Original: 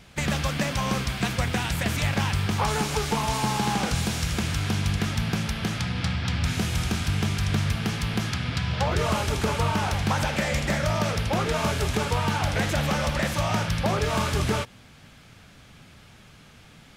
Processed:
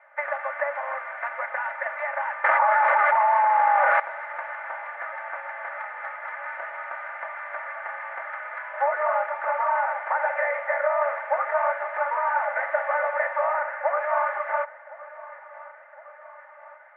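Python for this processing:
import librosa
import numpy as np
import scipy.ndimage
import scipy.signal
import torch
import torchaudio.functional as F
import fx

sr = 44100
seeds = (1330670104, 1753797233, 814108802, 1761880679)

y = fx.cvsd(x, sr, bps=16000, at=(13.53, 13.97))
y = scipy.signal.sosfilt(scipy.signal.cheby1(4, 1.0, [580.0, 2000.0], 'bandpass', fs=sr, output='sos'), y)
y = y + 0.86 * np.pad(y, (int(3.4 * sr / 1000.0), 0))[:len(y)]
y = fx.echo_feedback(y, sr, ms=1062, feedback_pct=59, wet_db=-19)
y = fx.env_flatten(y, sr, amount_pct=100, at=(2.44, 4.0))
y = F.gain(torch.from_numpy(y), 2.0).numpy()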